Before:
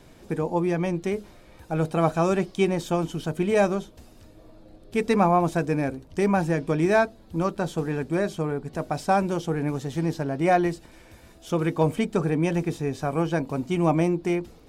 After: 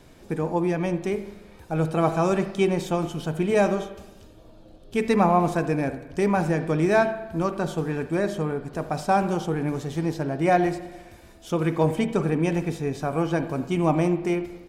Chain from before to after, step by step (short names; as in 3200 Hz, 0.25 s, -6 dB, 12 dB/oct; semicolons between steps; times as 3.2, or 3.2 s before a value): 3.77–4.97 thirty-one-band EQ 2000 Hz -6 dB, 3150 Hz +6 dB, 6300 Hz +3 dB; speakerphone echo 80 ms, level -17 dB; spring tank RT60 1.1 s, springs 39/44/57 ms, chirp 70 ms, DRR 10.5 dB